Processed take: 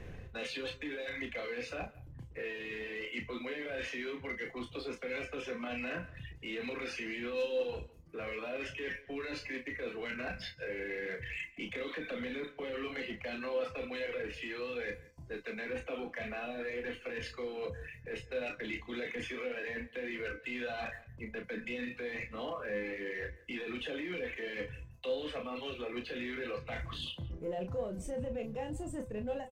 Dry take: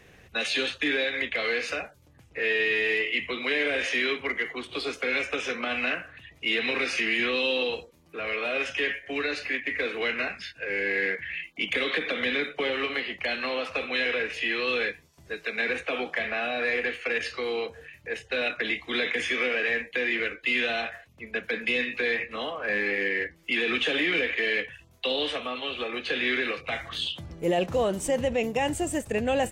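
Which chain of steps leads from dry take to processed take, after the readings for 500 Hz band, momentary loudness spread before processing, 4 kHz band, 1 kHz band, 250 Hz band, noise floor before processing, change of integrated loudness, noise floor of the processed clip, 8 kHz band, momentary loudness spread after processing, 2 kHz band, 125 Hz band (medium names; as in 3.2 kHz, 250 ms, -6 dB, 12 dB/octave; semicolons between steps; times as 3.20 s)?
-8.5 dB, 8 LU, -15.5 dB, -11.5 dB, -8.0 dB, -56 dBFS, -12.0 dB, -55 dBFS, -15.0 dB, 4 LU, -14.5 dB, -3.0 dB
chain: fade out at the end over 0.62 s; reverb removal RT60 0.78 s; tilt EQ -3 dB/octave; peak limiter -22.5 dBFS, peak gain reduction 10.5 dB; reverse; compression 8:1, threshold -38 dBFS, peak gain reduction 12 dB; reverse; waveshaping leveller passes 1; feedback comb 510 Hz, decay 0.32 s, harmonics all, mix 70%; hard clipper -36 dBFS, distortion -45 dB; doubling 33 ms -6.5 dB; echo from a far wall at 29 m, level -21 dB; trim +7 dB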